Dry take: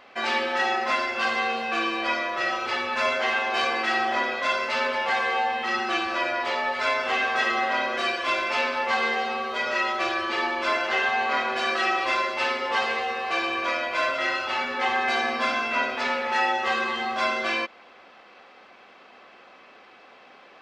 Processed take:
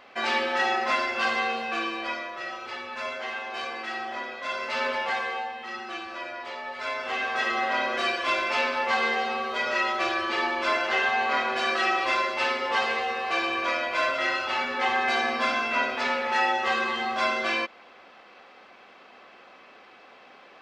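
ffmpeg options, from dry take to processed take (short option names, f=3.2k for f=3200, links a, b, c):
-af "volume=16.5dB,afade=t=out:st=1.3:d=1.1:silence=0.375837,afade=t=in:st=4.4:d=0.5:silence=0.421697,afade=t=out:st=4.9:d=0.64:silence=0.375837,afade=t=in:st=6.64:d=1.25:silence=0.334965"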